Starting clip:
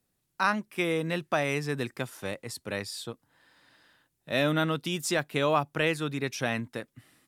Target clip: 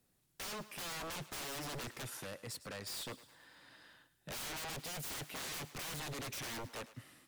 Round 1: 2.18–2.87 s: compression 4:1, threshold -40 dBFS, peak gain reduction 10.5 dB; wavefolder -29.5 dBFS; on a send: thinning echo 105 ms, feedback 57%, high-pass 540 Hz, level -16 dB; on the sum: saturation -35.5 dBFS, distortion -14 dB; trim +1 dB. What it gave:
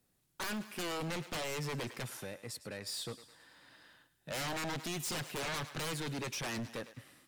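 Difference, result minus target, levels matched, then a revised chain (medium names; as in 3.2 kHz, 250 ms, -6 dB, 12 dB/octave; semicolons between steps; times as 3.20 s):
wavefolder: distortion -17 dB
2.18–2.87 s: compression 4:1, threshold -40 dBFS, peak gain reduction 10.5 dB; wavefolder -38.5 dBFS; on a send: thinning echo 105 ms, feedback 57%, high-pass 540 Hz, level -16 dB; on the sum: saturation -35.5 dBFS, distortion -27 dB; trim +1 dB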